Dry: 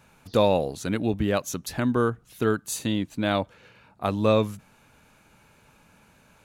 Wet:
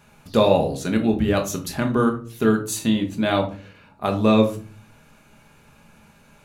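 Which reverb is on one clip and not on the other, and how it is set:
rectangular room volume 260 cubic metres, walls furnished, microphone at 1.3 metres
level +2 dB

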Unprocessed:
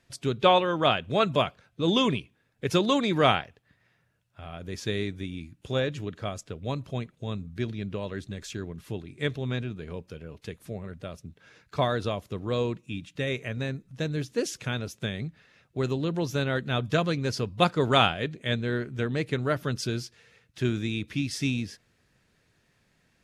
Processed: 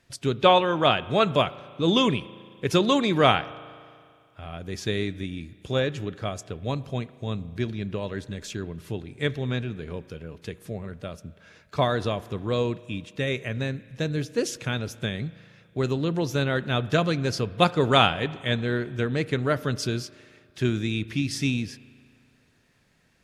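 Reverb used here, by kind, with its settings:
spring reverb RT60 2.2 s, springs 36 ms, chirp 55 ms, DRR 17.5 dB
level +2.5 dB

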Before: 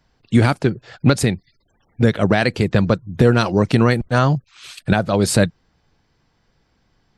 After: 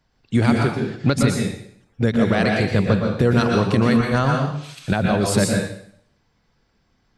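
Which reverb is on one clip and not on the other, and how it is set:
dense smooth reverb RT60 0.64 s, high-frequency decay 1×, pre-delay 105 ms, DRR 0 dB
level −4.5 dB

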